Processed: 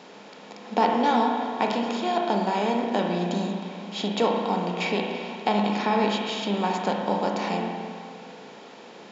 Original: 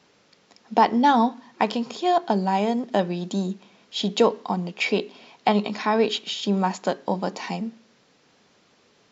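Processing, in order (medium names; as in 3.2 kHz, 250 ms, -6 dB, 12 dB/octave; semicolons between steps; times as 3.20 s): spectral levelling over time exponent 0.6; high-pass 110 Hz; reverberation RT60 2.2 s, pre-delay 34 ms, DRR 1 dB; trim -7.5 dB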